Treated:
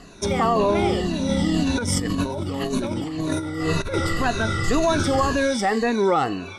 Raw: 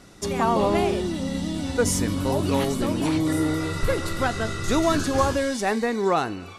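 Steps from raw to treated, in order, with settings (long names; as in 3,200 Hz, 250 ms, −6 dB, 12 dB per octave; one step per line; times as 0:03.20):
rippled gain that drifts along the octave scale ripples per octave 1.5, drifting −1.9 Hz, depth 13 dB
brickwall limiter −14 dBFS, peak gain reduction 7 dB
Bessel low-pass filter 7,200 Hz, order 2
0:01.29–0:03.94: compressor whose output falls as the input rises −26 dBFS, ratio −0.5
level +3 dB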